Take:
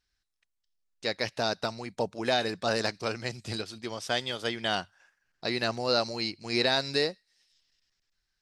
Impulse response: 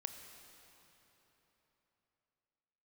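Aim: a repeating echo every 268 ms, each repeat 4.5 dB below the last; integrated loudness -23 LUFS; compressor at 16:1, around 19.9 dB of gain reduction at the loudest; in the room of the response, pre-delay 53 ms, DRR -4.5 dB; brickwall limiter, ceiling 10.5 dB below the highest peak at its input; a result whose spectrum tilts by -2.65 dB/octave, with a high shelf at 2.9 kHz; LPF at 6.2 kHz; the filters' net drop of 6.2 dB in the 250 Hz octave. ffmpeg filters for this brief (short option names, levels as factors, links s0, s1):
-filter_complex "[0:a]lowpass=6200,equalizer=f=250:t=o:g=-8.5,highshelf=f=2900:g=8,acompressor=threshold=0.0112:ratio=16,alimiter=level_in=2.99:limit=0.0631:level=0:latency=1,volume=0.335,aecho=1:1:268|536|804|1072|1340|1608|1876|2144|2412:0.596|0.357|0.214|0.129|0.0772|0.0463|0.0278|0.0167|0.01,asplit=2[s0][s1];[1:a]atrim=start_sample=2205,adelay=53[s2];[s1][s2]afir=irnorm=-1:irlink=0,volume=2.11[s3];[s0][s3]amix=inputs=2:normalize=0,volume=6.31"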